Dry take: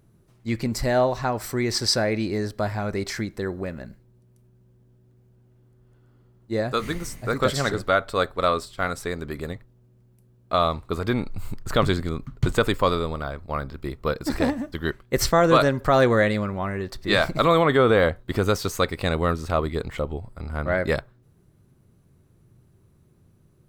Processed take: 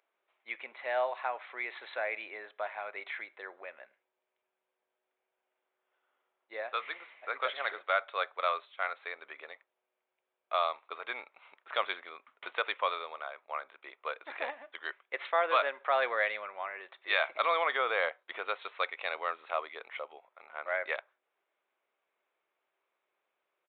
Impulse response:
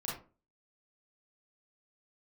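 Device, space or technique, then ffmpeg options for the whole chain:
musical greeting card: -af "aresample=8000,aresample=44100,highpass=frequency=620:width=0.5412,highpass=frequency=620:width=1.3066,equalizer=frequency=2300:width_type=o:width=0.37:gain=7,volume=-7.5dB"

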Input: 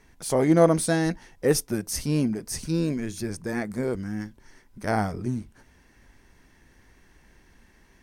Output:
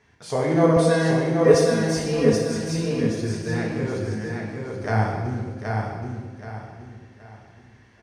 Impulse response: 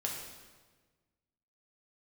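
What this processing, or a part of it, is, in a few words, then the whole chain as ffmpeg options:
supermarket ceiling speaker: -filter_complex "[0:a]highpass=210,lowpass=5100[link_01];[1:a]atrim=start_sample=2205[link_02];[link_01][link_02]afir=irnorm=-1:irlink=0,asettb=1/sr,asplit=3[link_03][link_04][link_05];[link_03]atrim=end=0.764[link_06];[link_04]atrim=start=0.76:end=2.33,asetpts=PTS-STARTPTS,afade=type=in:duration=0.004:curve=qsin,afade=type=out:start_time=1.566:duration=0.004:curve=qsin,aecho=1:1:4.2:0.97,atrim=end_sample=69237[link_07];[link_05]atrim=start=2.326[link_08];[link_06][link_07]acrossfade=duration=0.004:curve1=hsin:curve2=qsin[link_09];[link_09][link_08]acrossfade=duration=0.004:curve1=qsin:curve2=hsin,lowshelf=frequency=150:width_type=q:width=1.5:gain=12.5,aecho=1:1:775|1550|2325|3100:0.631|0.208|0.0687|0.0227"

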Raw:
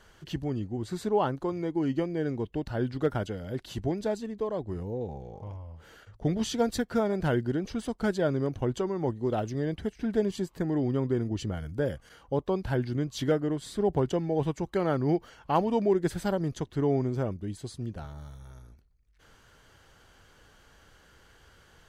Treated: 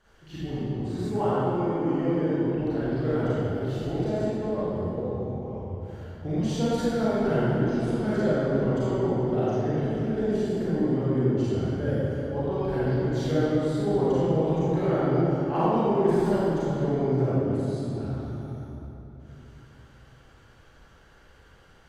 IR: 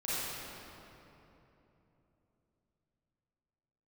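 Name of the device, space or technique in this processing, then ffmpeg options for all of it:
swimming-pool hall: -filter_complex "[1:a]atrim=start_sample=2205[link_01];[0:a][link_01]afir=irnorm=-1:irlink=0,highshelf=frequency=4700:gain=-5.5,asettb=1/sr,asplit=3[link_02][link_03][link_04];[link_02]atrim=end=1.104[link_05];[link_03]atrim=start=1.1:end=2.09,asetpts=PTS-STARTPTS,afade=type=in:duration=0.004:curve=qsin,afade=type=out:start_time=0.986:duration=0.004:curve=qsin,equalizer=frequency=4000:width=3.8:gain=-6[link_06];[link_04]atrim=start=2.086[link_07];[link_05][link_06]acrossfade=duration=0.004:curve1=hsin:curve2=qsin[link_08];[link_08][link_07]acrossfade=duration=0.004:curve1=qsin:curve2=hsin,volume=-3.5dB"

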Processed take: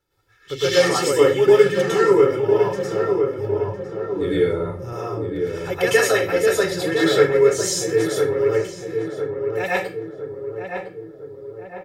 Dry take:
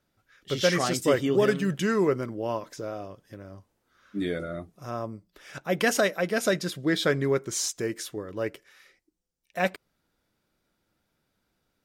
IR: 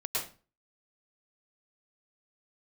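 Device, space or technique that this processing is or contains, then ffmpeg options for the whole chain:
microphone above a desk: -filter_complex "[0:a]aecho=1:1:2.3:0.81[link_01];[1:a]atrim=start_sample=2205[link_02];[link_01][link_02]afir=irnorm=-1:irlink=0,asettb=1/sr,asplit=3[link_03][link_04][link_05];[link_03]atrim=end=3.384[link_06];[link_04]atrim=start=3.38:end=4.93,asetpts=PTS-STARTPTS,afade=type=in:duration=0.004:curve=qsin,afade=type=out:start_time=1.546:duration=0.004:curve=qsin,equalizer=frequency=91:width_type=o:width=2.6:gain=10.5[link_07];[link_05]atrim=start=4.926[link_08];[link_06][link_07]acrossfade=duration=0.004:curve1=hsin:curve2=qsin[link_09];[link_09][link_08]acrossfade=duration=0.004:curve1=qsin:curve2=hsin,asplit=2[link_10][link_11];[link_11]adelay=1007,lowpass=frequency=1300:poles=1,volume=-5dB,asplit=2[link_12][link_13];[link_13]adelay=1007,lowpass=frequency=1300:poles=1,volume=0.55,asplit=2[link_14][link_15];[link_15]adelay=1007,lowpass=frequency=1300:poles=1,volume=0.55,asplit=2[link_16][link_17];[link_17]adelay=1007,lowpass=frequency=1300:poles=1,volume=0.55,asplit=2[link_18][link_19];[link_19]adelay=1007,lowpass=frequency=1300:poles=1,volume=0.55,asplit=2[link_20][link_21];[link_21]adelay=1007,lowpass=frequency=1300:poles=1,volume=0.55,asplit=2[link_22][link_23];[link_23]adelay=1007,lowpass=frequency=1300:poles=1,volume=0.55[link_24];[link_10][link_12][link_14][link_16][link_18][link_20][link_22][link_24]amix=inputs=8:normalize=0,volume=-1dB"

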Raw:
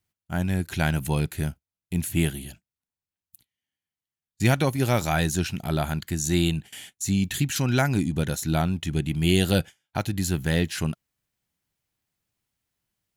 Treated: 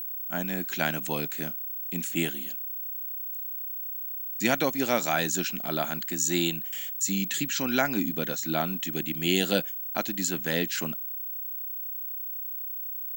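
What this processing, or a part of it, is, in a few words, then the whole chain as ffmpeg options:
old television with a line whistle: -filter_complex "[0:a]asettb=1/sr,asplit=3[link_01][link_02][link_03];[link_01]atrim=end=7.444[link_04];[link_02]atrim=start=7.44:end=8.64,asetpts=PTS-STARTPTS,afade=type=in:duration=0.004:curve=qsin,afade=type=out:start_time=1.196:duration=0.004:curve=qsin,lowpass=6200[link_05];[link_03]atrim=start=8.636[link_06];[link_04][link_05]acrossfade=duration=0.004:curve1=hsin:curve2=qsin[link_07];[link_07][link_06]acrossfade=duration=0.004:curve1=qsin:curve2=hsin,highpass=frequency=220:width=0.5412,highpass=frequency=220:width=1.3066,equalizer=frequency=380:width_type=q:width=4:gain=-4,equalizer=frequency=880:width_type=q:width=4:gain=-3,equalizer=frequency=7200:width_type=q:width=4:gain=6,lowpass=frequency=8000:width=0.5412,lowpass=frequency=8000:width=1.3066,aeval=exprs='val(0)+0.0251*sin(2*PI*15734*n/s)':channel_layout=same"

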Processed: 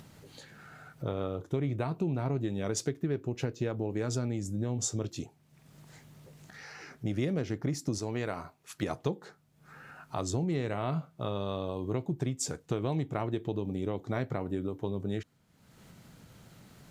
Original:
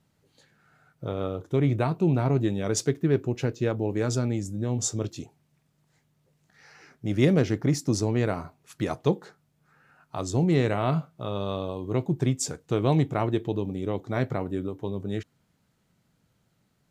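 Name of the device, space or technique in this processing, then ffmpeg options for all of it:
upward and downward compression: -filter_complex "[0:a]asettb=1/sr,asplit=3[link_01][link_02][link_03];[link_01]atrim=end=7.984[link_04];[link_02]atrim=start=7.98:end=8.83,asetpts=PTS-STARTPTS,afade=type=in:duration=0.004:curve=qsin,afade=type=out:start_time=0.846:duration=0.004:curve=qsin,lowshelf=frequency=460:gain=-8[link_05];[link_03]atrim=start=8.826[link_06];[link_04][link_05]acrossfade=duration=0.004:curve1=hsin:curve2=qsin[link_07];[link_07][link_06]acrossfade=duration=0.004:curve1=qsin:curve2=hsin,acompressor=mode=upward:threshold=-40dB:ratio=2.5,acompressor=threshold=-28dB:ratio=6"

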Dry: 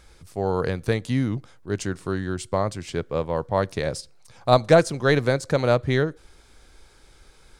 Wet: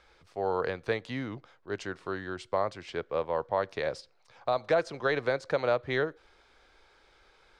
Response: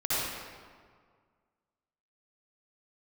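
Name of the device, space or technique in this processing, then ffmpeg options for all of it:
DJ mixer with the lows and highs turned down: -filter_complex "[0:a]acrossover=split=400 5100:gain=0.2 1 0.0794[link_01][link_02][link_03];[link_01][link_02][link_03]amix=inputs=3:normalize=0,alimiter=limit=-13.5dB:level=0:latency=1:release=191,equalizer=frequency=5800:width=0.43:gain=-2.5,volume=-2dB"

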